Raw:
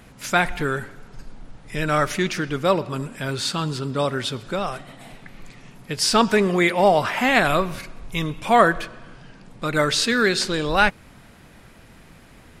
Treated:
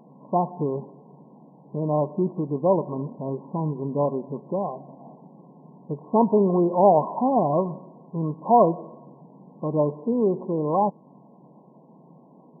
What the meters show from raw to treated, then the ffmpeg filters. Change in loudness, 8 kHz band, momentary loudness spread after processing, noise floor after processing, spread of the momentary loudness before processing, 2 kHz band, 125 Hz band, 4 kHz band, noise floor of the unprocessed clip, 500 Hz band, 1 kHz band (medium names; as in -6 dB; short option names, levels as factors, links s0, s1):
-2.5 dB, under -40 dB, 15 LU, -53 dBFS, 13 LU, under -40 dB, -1.0 dB, under -40 dB, -48 dBFS, 0.0 dB, -2.0 dB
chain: -af "afftfilt=real='re*between(b*sr/4096,130,1100)':imag='im*between(b*sr/4096,130,1100)':win_size=4096:overlap=0.75"